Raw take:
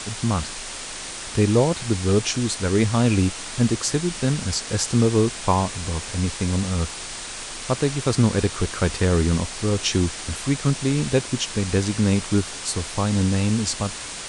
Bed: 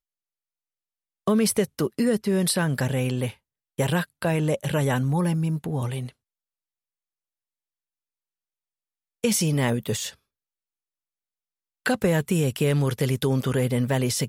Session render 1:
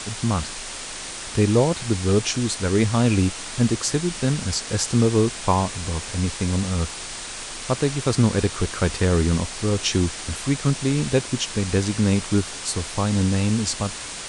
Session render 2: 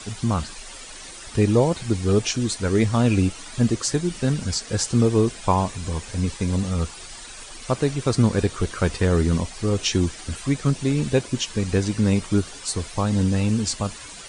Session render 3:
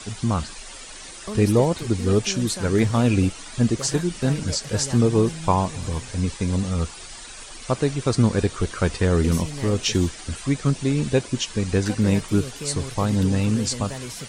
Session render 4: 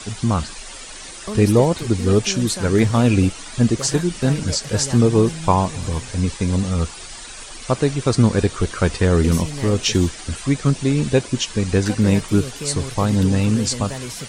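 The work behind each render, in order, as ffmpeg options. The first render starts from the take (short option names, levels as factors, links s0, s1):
-af anull
-af "afftdn=nr=11:nf=-34"
-filter_complex "[1:a]volume=0.282[s0];[0:a][s0]amix=inputs=2:normalize=0"
-af "volume=1.5"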